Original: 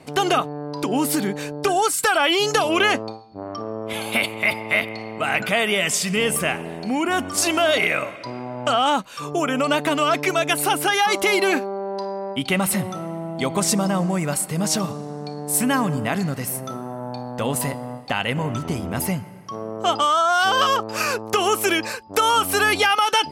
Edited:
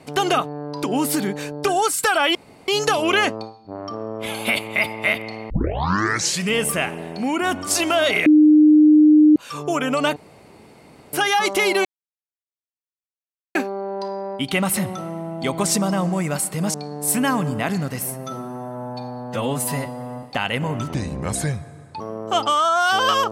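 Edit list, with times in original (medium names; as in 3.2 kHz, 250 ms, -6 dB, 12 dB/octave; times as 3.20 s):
2.35 s: insert room tone 0.33 s
5.17 s: tape start 0.93 s
7.93–9.03 s: bleep 304 Hz -8 dBFS
9.83–10.80 s: room tone
11.52 s: insert silence 1.70 s
14.71–15.20 s: delete
16.56–17.98 s: stretch 1.5×
18.69–19.53 s: speed 79%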